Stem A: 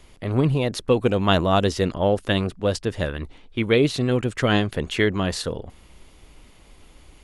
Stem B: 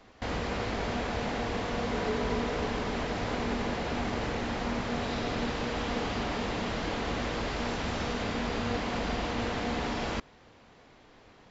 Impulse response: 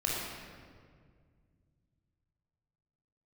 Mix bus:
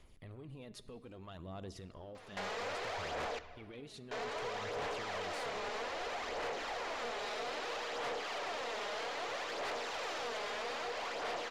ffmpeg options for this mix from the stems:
-filter_complex "[0:a]acompressor=threshold=0.0447:ratio=6,alimiter=level_in=1.26:limit=0.0631:level=0:latency=1:release=19,volume=0.794,volume=0.15,asplit=2[s0][s1];[s1]volume=0.0944[s2];[1:a]highpass=f=430:w=0.5412,highpass=f=430:w=1.3066,acompressor=threshold=0.0141:ratio=6,adelay=2150,volume=1.06,asplit=3[s3][s4][s5];[s3]atrim=end=3.39,asetpts=PTS-STARTPTS,afade=t=out:st=3.386:d=0.004:c=hsin[s6];[s4]atrim=start=3.39:end=4.11,asetpts=PTS-STARTPTS,volume=0[s7];[s5]atrim=start=4.11,asetpts=PTS-STARTPTS,afade=t=in:d=0.004:c=hsin[s8];[s6][s7][s8]concat=n=3:v=0:a=1,asplit=2[s9][s10];[s10]volume=0.112[s11];[2:a]atrim=start_sample=2205[s12];[s2][s11]amix=inputs=2:normalize=0[s13];[s13][s12]afir=irnorm=-1:irlink=0[s14];[s0][s9][s14]amix=inputs=3:normalize=0,aphaser=in_gain=1:out_gain=1:delay=4.9:decay=0.43:speed=0.62:type=sinusoidal,asoftclip=type=tanh:threshold=0.02,aeval=exprs='0.02*(cos(1*acos(clip(val(0)/0.02,-1,1)))-cos(1*PI/2))+0.00141*(cos(4*acos(clip(val(0)/0.02,-1,1)))-cos(4*PI/2))+0.000398*(cos(6*acos(clip(val(0)/0.02,-1,1)))-cos(6*PI/2))':c=same"

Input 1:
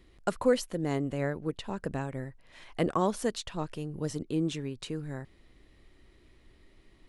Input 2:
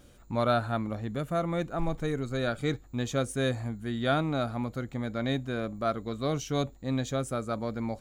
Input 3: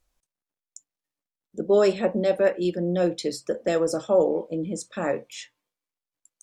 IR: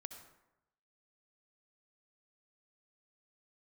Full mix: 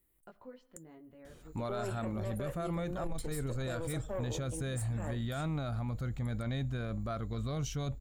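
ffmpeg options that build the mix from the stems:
-filter_complex "[0:a]lowpass=3200,acompressor=threshold=0.0178:ratio=2,flanger=delay=17.5:depth=2.1:speed=0.94,volume=0.126,asplit=2[s0][s1];[s1]volume=0.501[s2];[1:a]asubboost=boost=5:cutoff=130,alimiter=limit=0.0891:level=0:latency=1:release=279,adelay=1250,volume=0.891[s3];[2:a]aexciter=amount=14.4:drive=5:freq=8500,aeval=exprs='(tanh(6.31*val(0)+0.65)-tanh(0.65))/6.31':c=same,volume=0.251[s4];[3:a]atrim=start_sample=2205[s5];[s2][s5]afir=irnorm=-1:irlink=0[s6];[s0][s3][s4][s6]amix=inputs=4:normalize=0,alimiter=level_in=1.68:limit=0.0631:level=0:latency=1:release=12,volume=0.596"

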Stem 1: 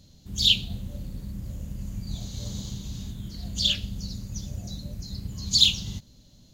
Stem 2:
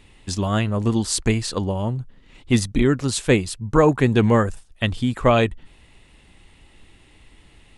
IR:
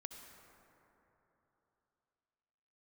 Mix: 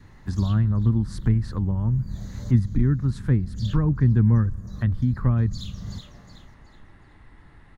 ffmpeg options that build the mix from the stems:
-filter_complex "[0:a]volume=1.06,asplit=2[s0][s1];[s1]volume=0.133[s2];[1:a]equalizer=f=125:t=o:w=1:g=4,equalizer=f=500:t=o:w=1:g=-4,equalizer=f=1000:t=o:w=1:g=3,equalizer=f=2000:t=o:w=1:g=-3,equalizer=f=4000:t=o:w=1:g=3,equalizer=f=8000:t=o:w=1:g=-9,volume=1,asplit=2[s3][s4];[s4]volume=0.106[s5];[2:a]atrim=start_sample=2205[s6];[s5][s6]afir=irnorm=-1:irlink=0[s7];[s2]aecho=0:1:372|744|1116|1488|1860:1|0.32|0.102|0.0328|0.0105[s8];[s0][s3][s7][s8]amix=inputs=4:normalize=0,highshelf=f=2200:t=q:w=3:g=-8,acrossover=split=230[s9][s10];[s10]acompressor=threshold=0.00891:ratio=3[s11];[s9][s11]amix=inputs=2:normalize=0,adynamicequalizer=threshold=0.00178:dfrequency=700:dqfactor=2.6:tfrequency=700:tqfactor=2.6:attack=5:release=100:ratio=0.375:range=3.5:mode=cutabove:tftype=bell"

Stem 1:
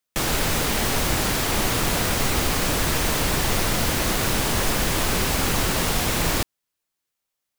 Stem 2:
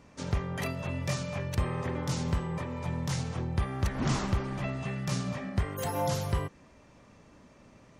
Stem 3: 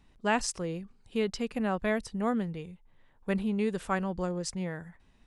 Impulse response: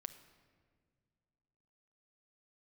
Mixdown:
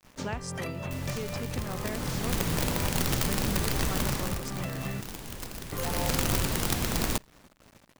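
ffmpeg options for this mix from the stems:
-filter_complex "[0:a]acrossover=split=320[s0][s1];[s1]acompressor=threshold=0.0178:ratio=2[s2];[s0][s2]amix=inputs=2:normalize=0,aeval=exprs='(mod(7.08*val(0)+1,2)-1)/7.08':c=same,adelay=750,volume=2.37,afade=t=in:st=1.74:d=0.72:silence=0.281838,afade=t=out:st=3.97:d=0.44:silence=0.281838,afade=t=in:st=5.72:d=0.38:silence=0.251189,asplit=2[s3][s4];[s4]volume=0.106[s5];[1:a]agate=range=0.0224:threshold=0.00316:ratio=3:detection=peak,volume=1.41,asplit=3[s6][s7][s8];[s6]atrim=end=5.01,asetpts=PTS-STARTPTS,afade=t=out:st=5.006:d=0.004:c=hsin[s9];[s7]atrim=start=5.01:end=5.72,asetpts=PTS-STARTPTS,volume=0[s10];[s8]atrim=start=5.72,asetpts=PTS-STARTPTS,afade=t=in:d=0.004:c=hsin[s11];[s9][s10][s11]concat=n=3:v=0:a=1[s12];[2:a]volume=0.891[s13];[s12][s13]amix=inputs=2:normalize=0,acrusher=bits=8:mix=0:aa=0.000001,acompressor=threshold=0.0282:ratio=6,volume=1[s14];[3:a]atrim=start_sample=2205[s15];[s5][s15]afir=irnorm=-1:irlink=0[s16];[s3][s14][s16]amix=inputs=3:normalize=0"

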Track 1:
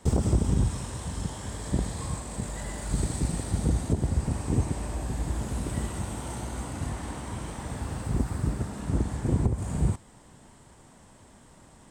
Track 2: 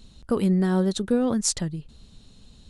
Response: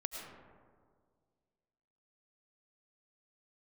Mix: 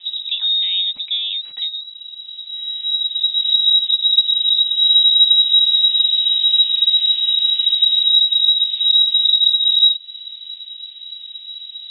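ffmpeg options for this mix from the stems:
-filter_complex "[0:a]acompressor=threshold=0.0282:ratio=10,asubboost=boost=6.5:cutoff=79,volume=0.891[s0];[1:a]equalizer=f=290:t=o:w=1.4:g=-14,volume=0.75,asplit=2[s1][s2];[s2]apad=whole_len=525014[s3];[s0][s3]sidechaincompress=threshold=0.00355:ratio=10:attack=16:release=1120[s4];[s4][s1]amix=inputs=2:normalize=0,tiltshelf=f=1100:g=7.5,lowpass=f=3300:t=q:w=0.5098,lowpass=f=3300:t=q:w=0.6013,lowpass=f=3300:t=q:w=0.9,lowpass=f=3300:t=q:w=2.563,afreqshift=-3900,highshelf=f=2600:g=9"

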